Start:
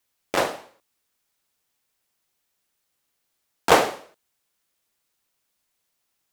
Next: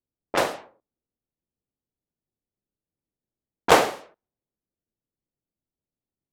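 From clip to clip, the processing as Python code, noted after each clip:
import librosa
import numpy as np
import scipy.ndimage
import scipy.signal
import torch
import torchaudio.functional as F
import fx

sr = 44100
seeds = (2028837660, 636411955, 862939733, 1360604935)

y = fx.env_lowpass(x, sr, base_hz=320.0, full_db=-21.0)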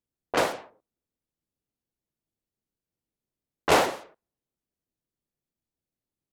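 y = 10.0 ** (-13.0 / 20.0) * np.tanh(x / 10.0 ** (-13.0 / 20.0))
y = fx.vibrato_shape(y, sr, shape='saw_up', rate_hz=5.7, depth_cents=250.0)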